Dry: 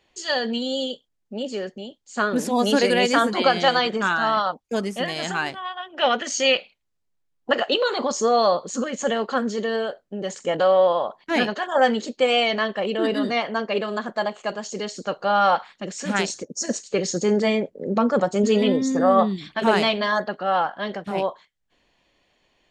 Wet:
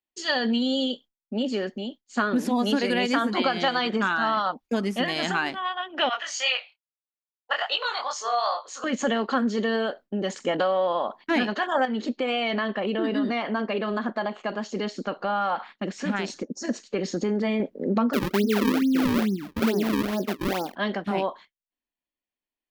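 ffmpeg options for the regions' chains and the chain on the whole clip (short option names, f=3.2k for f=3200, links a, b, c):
-filter_complex "[0:a]asettb=1/sr,asplit=3[a][b][c];[a]atrim=end=6.094[d];[b]atrim=start=6.09:end=8.84,asetpts=PTS-STARTPTS,afade=t=in:d=0.004:c=qsin,afade=t=out:st=2.746:d=0.004:c=qsin,highpass=f=700:w=0.5412,highpass=f=700:w=1.3066,flanger=delay=19.5:depth=5.9:speed=2.4[e];[c]atrim=start=8.836[f];[d][e]acrossfade=d=0.004:c1=hsin:c2=qsin[g];[g][f]acrossfade=d=0.004:c1=qsin:c2=hsin,asettb=1/sr,asplit=3[h][i][j];[h]atrim=end=11.854[k];[i]atrim=start=11.85:end=17.6,asetpts=PTS-STARTPTS,afade=t=in:d=0.004:c=qsin,afade=t=out:st=5.746:d=0.004:c=qsin,acompressor=threshold=-25dB:ratio=2.5:attack=3.2:release=140:knee=1:detection=peak,aemphasis=mode=reproduction:type=50kf[l];[j]atrim=start=17.596[m];[k][l]acrossfade=d=0.004:c1=hsin:c2=qsin[n];[n][m]acrossfade=d=0.004:c1=qsin:c2=hsin,asettb=1/sr,asplit=3[o][p][q];[o]atrim=end=18.134[r];[p]atrim=start=18.13:end=20.76,asetpts=PTS-STARTPTS,afade=t=in:d=0.004:c=qsin,afade=t=out:st=2.626:d=0.004:c=qsin,lowpass=f=380:t=q:w=1.8,acrusher=samples=36:mix=1:aa=0.000001:lfo=1:lforange=57.6:lforate=2.3[s];[q]atrim=start=20.756[t];[r][s]acrossfade=d=0.004:c1=hsin:c2=qsin[u];[u][t]acrossfade=d=0.004:c1=qsin:c2=hsin,agate=range=-33dB:threshold=-41dB:ratio=3:detection=peak,equalizer=f=125:t=o:w=1:g=-10,equalizer=f=250:t=o:w=1:g=6,equalizer=f=500:t=o:w=1:g=-5,equalizer=f=8k:t=o:w=1:g=-9,acompressor=threshold=-24dB:ratio=5,volume=3.5dB"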